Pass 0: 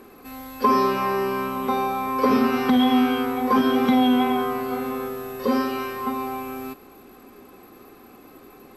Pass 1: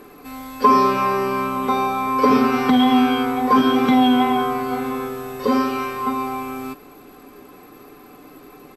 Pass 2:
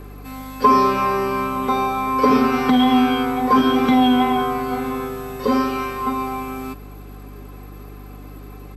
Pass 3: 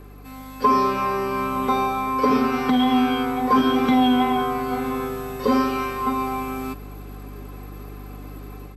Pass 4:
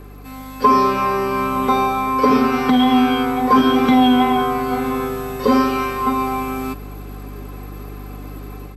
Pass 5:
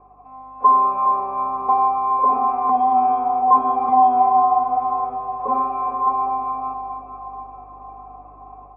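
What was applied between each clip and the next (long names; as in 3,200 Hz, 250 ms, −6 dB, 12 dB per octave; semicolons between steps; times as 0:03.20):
comb filter 6.8 ms, depth 40%; level +3 dB
mains hum 50 Hz, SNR 18 dB
automatic gain control gain up to 6 dB; level −5.5 dB
surface crackle 39 per second −47 dBFS; level +4.5 dB
formant resonators in series a; feedback delay with all-pass diffusion 463 ms, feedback 51%, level −9.5 dB; level +7.5 dB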